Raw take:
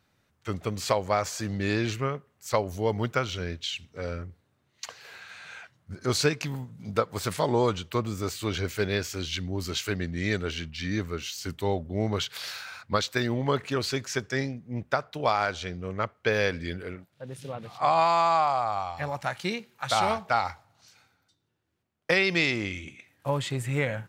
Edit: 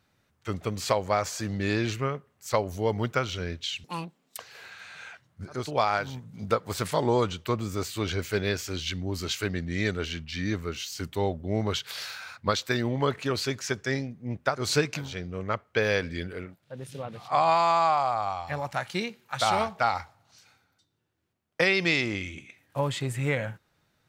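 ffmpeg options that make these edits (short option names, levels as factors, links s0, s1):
-filter_complex "[0:a]asplit=7[s0][s1][s2][s3][s4][s5][s6];[s0]atrim=end=3.844[s7];[s1]atrim=start=3.84:end=4.88,asetpts=PTS-STARTPTS,asetrate=84672,aresample=44100[s8];[s2]atrim=start=4.876:end=6.21[s9];[s3]atrim=start=14.95:end=15.68[s10];[s4]atrim=start=6.42:end=15.19[s11];[s5]atrim=start=5.97:end=6.66[s12];[s6]atrim=start=15.44[s13];[s7][s8]acrossfade=d=0.004:c1=hsin:c2=hsin[s14];[s14][s9]acrossfade=d=0.004:c1=hsin:c2=hsin[s15];[s15][s10]acrossfade=d=0.24:c1=tri:c2=tri[s16];[s16][s11]acrossfade=d=0.24:c1=tri:c2=tri[s17];[s17][s12]acrossfade=d=0.24:c1=tri:c2=tri[s18];[s18][s13]acrossfade=d=0.24:c1=tri:c2=tri"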